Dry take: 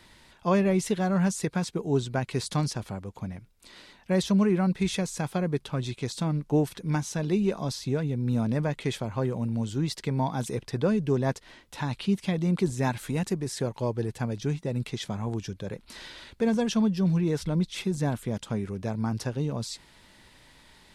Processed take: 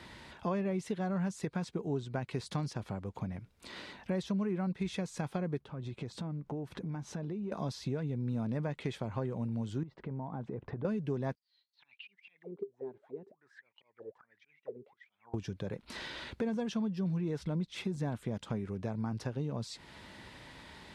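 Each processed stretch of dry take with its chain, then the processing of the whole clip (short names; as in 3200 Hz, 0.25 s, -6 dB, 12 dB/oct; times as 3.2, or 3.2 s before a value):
5.6–7.52 high shelf 2000 Hz -10 dB + compressor 3:1, threshold -41 dBFS
9.83–10.85 LPF 1200 Hz + compressor 3:1, threshold -41 dBFS
11.35–15.34 notch 2600 Hz, Q 19 + auto swell 0.243 s + auto-wah 400–4800 Hz, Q 21, down, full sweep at -26 dBFS
whole clip: HPF 60 Hz; compressor 3:1, threshold -43 dBFS; LPF 2800 Hz 6 dB/oct; gain +6 dB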